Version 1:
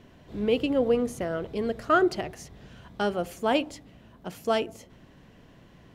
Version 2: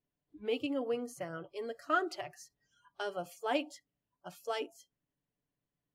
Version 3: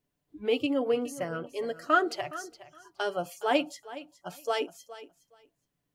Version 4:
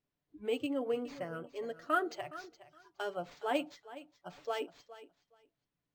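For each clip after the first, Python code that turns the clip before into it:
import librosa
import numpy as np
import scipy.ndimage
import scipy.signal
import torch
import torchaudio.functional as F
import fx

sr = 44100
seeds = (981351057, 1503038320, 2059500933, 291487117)

y1 = fx.noise_reduce_blind(x, sr, reduce_db=28)
y1 = fx.hpss(y1, sr, part='harmonic', gain_db=-4)
y1 = y1 + 0.44 * np.pad(y1, (int(6.9 * sr / 1000.0), 0))[:len(y1)]
y1 = y1 * librosa.db_to_amplitude(-7.5)
y2 = fx.echo_feedback(y1, sr, ms=416, feedback_pct=17, wet_db=-16.0)
y2 = y2 * librosa.db_to_amplitude(7.0)
y3 = np.interp(np.arange(len(y2)), np.arange(len(y2))[::4], y2[::4])
y3 = y3 * librosa.db_to_amplitude(-7.0)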